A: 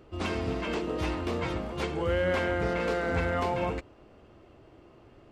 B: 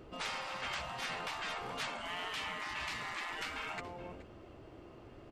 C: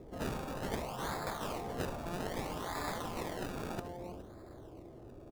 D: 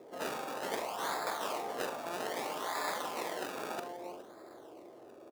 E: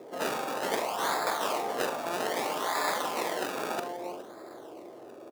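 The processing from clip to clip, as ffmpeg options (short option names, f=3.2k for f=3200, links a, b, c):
-af "aecho=1:1:424:0.112,afftfilt=real='re*lt(hypot(re,im),0.0501)':imag='im*lt(hypot(re,im),0.0501)':win_size=1024:overlap=0.75,volume=1dB"
-filter_complex "[0:a]acrossover=split=990[a][b];[b]acrusher=samples=29:mix=1:aa=0.000001:lfo=1:lforange=29:lforate=0.62[c];[a][c]amix=inputs=2:normalize=0,aecho=1:1:71:0.2,volume=2.5dB"
-filter_complex "[0:a]highpass=430,asplit=2[a][b];[b]adelay=43,volume=-9dB[c];[a][c]amix=inputs=2:normalize=0,volume=3.5dB"
-af "highpass=84,volume=6.5dB"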